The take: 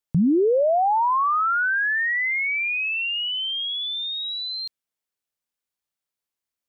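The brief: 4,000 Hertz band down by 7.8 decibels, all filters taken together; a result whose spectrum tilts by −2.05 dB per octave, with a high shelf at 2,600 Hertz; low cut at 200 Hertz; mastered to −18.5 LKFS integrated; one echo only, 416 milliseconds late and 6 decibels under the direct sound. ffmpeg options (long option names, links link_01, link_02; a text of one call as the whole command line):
ffmpeg -i in.wav -af "highpass=200,highshelf=frequency=2600:gain=-5.5,equalizer=frequency=4000:width_type=o:gain=-6,aecho=1:1:416:0.501,volume=4dB" out.wav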